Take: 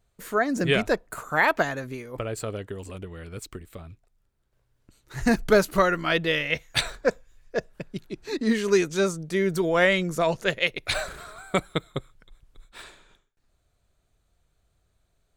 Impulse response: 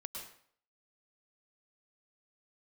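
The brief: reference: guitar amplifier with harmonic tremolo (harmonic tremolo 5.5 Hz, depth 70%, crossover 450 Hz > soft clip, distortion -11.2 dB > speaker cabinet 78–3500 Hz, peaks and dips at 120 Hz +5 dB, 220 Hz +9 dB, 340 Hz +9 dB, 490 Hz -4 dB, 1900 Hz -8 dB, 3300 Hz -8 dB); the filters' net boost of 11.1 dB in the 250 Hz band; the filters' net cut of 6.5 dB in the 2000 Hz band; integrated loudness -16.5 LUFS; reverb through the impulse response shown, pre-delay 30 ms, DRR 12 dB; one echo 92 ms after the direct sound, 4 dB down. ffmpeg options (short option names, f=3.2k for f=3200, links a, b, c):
-filter_complex "[0:a]equalizer=f=250:t=o:g=5,equalizer=f=2k:t=o:g=-3,aecho=1:1:92:0.631,asplit=2[a][b];[1:a]atrim=start_sample=2205,adelay=30[c];[b][c]afir=irnorm=-1:irlink=0,volume=-10dB[d];[a][d]amix=inputs=2:normalize=0,acrossover=split=450[e][f];[e]aeval=exprs='val(0)*(1-0.7/2+0.7/2*cos(2*PI*5.5*n/s))':c=same[g];[f]aeval=exprs='val(0)*(1-0.7/2-0.7/2*cos(2*PI*5.5*n/s))':c=same[h];[g][h]amix=inputs=2:normalize=0,asoftclip=threshold=-20.5dB,highpass=78,equalizer=f=120:t=q:w=4:g=5,equalizer=f=220:t=q:w=4:g=9,equalizer=f=340:t=q:w=4:g=9,equalizer=f=490:t=q:w=4:g=-4,equalizer=f=1.9k:t=q:w=4:g=-8,equalizer=f=3.3k:t=q:w=4:g=-8,lowpass=f=3.5k:w=0.5412,lowpass=f=3.5k:w=1.3066,volume=9dB"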